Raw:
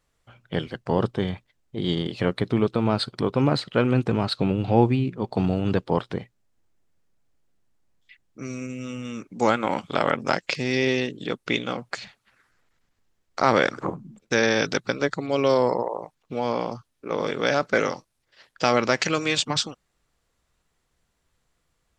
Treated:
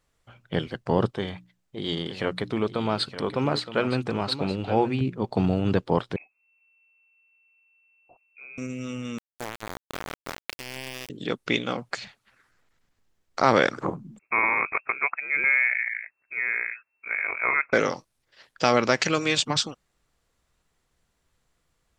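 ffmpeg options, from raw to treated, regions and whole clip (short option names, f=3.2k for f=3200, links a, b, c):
-filter_complex "[0:a]asettb=1/sr,asplit=3[a][b][c];[a]atrim=end=1.104[d];[b]atrim=start=1.1:end=5.01,asetpts=PTS-STARTPTS,afade=t=in:d=0.004:c=qsin,afade=t=out:st=3.906:d=0.004:c=qsin,lowshelf=f=440:g=-6.5,bandreject=f=60:t=h:w=6,bandreject=f=120:t=h:w=6,bandreject=f=180:t=h:w=6,bandreject=f=240:t=h:w=6,bandreject=f=300:t=h:w=6,aecho=1:1:918:0.251,atrim=end_sample=172431[e];[c]atrim=start=5.006[f];[d][e]acrossfade=d=0.004:c1=hsin:c2=qsin[g];[g][f]acrossfade=d=0.004:c1=qsin:c2=hsin,asettb=1/sr,asplit=3[h][i][j];[h]atrim=end=6.164[k];[i]atrim=start=6.16:end=8.58,asetpts=PTS-STARTPTS,afade=t=in:d=0.004:c=qsin,afade=t=out:st=2.416:d=0.004:c=qsin,equalizer=f=930:t=o:w=0.47:g=-14,acompressor=threshold=-49dB:ratio=2:attack=3.2:release=140:knee=1:detection=peak,lowpass=f=2.3k:t=q:w=0.5098,lowpass=f=2.3k:t=q:w=0.6013,lowpass=f=2.3k:t=q:w=0.9,lowpass=f=2.3k:t=q:w=2.563,afreqshift=-2700[l];[j]atrim=start=8.576[m];[k][l]acrossfade=d=0.004:c1=hsin:c2=qsin[n];[n][m]acrossfade=d=0.004:c1=qsin:c2=hsin,asettb=1/sr,asplit=3[o][p][q];[o]atrim=end=9.184[r];[p]atrim=start=9.18:end=11.1,asetpts=PTS-STARTPTS,afade=t=in:d=0.004:c=qsin,afade=t=out:st=1.916:d=0.004:c=qsin,acompressor=threshold=-30dB:ratio=4:attack=3.2:release=140:knee=1:detection=peak,aeval=exprs='val(0)*gte(abs(val(0)),0.0501)':c=same[s];[q]atrim=start=11.096[t];[r][s]acrossfade=d=0.004:c1=hsin:c2=qsin[u];[u][t]acrossfade=d=0.004:c1=qsin:c2=hsin,asettb=1/sr,asplit=3[v][w][x];[v]atrim=end=14.194[y];[w]atrim=start=14.19:end=17.73,asetpts=PTS-STARTPTS,afade=t=in:d=0.004:c=qsin,afade=t=out:st=3.536:d=0.004:c=qsin,equalizer=f=94:w=0.43:g=-10,lowpass=f=2.3k:t=q:w=0.5098,lowpass=f=2.3k:t=q:w=0.6013,lowpass=f=2.3k:t=q:w=0.9,lowpass=f=2.3k:t=q:w=2.563,afreqshift=-2700[z];[x]atrim=start=17.726[aa];[y][z]acrossfade=d=0.004:c1=hsin:c2=qsin[ab];[ab][aa]acrossfade=d=0.004:c1=qsin:c2=hsin"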